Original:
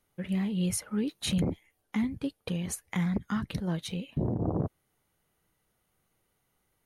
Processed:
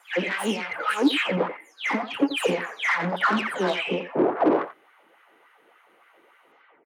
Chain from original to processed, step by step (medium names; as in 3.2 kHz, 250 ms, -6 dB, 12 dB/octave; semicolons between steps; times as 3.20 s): delay that grows with frequency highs early, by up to 334 ms; resonant high shelf 3.6 kHz -9.5 dB, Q 1.5; overdrive pedal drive 26 dB, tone 2.2 kHz, clips at -17.5 dBFS; LFO high-pass sine 3.5 Hz 280–1500 Hz; echo from a far wall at 15 m, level -12 dB; trim +2.5 dB